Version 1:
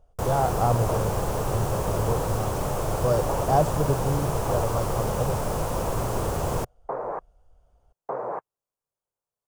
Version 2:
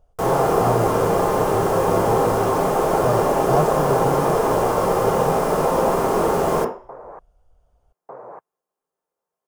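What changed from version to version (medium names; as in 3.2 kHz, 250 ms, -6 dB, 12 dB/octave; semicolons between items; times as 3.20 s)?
second sound -7.5 dB; reverb: on, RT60 0.45 s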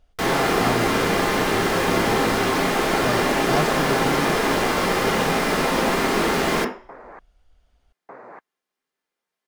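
master: add graphic EQ 125/250/500/1000/2000/4000 Hz -7/+7/-7/-5/+12/+11 dB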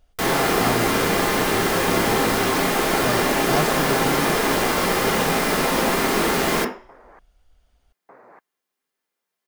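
second sound -7.0 dB; master: add treble shelf 9.3 kHz +10.5 dB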